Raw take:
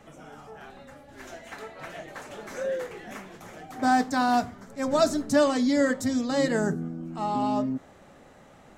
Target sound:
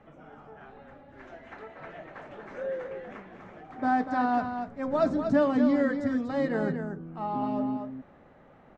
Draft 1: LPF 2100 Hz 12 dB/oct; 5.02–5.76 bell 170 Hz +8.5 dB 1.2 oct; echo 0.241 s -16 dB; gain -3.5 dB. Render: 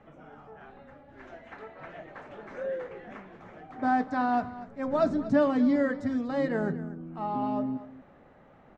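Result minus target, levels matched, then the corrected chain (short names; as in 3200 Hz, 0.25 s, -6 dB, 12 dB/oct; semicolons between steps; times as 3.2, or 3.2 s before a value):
echo-to-direct -8.5 dB
LPF 2100 Hz 12 dB/oct; 5.02–5.76 bell 170 Hz +8.5 dB 1.2 oct; echo 0.241 s -7.5 dB; gain -3.5 dB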